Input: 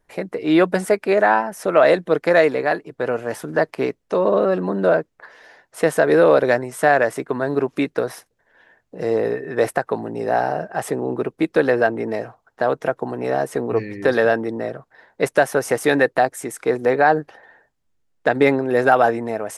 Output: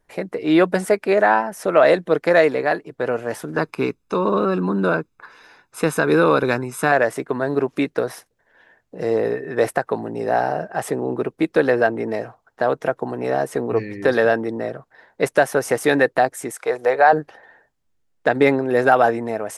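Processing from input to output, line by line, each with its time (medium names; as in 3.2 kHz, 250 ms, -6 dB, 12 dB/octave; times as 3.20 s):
3.57–6.92 s: comb 0.8 ms
16.51–17.13 s: resonant low shelf 400 Hz -11 dB, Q 1.5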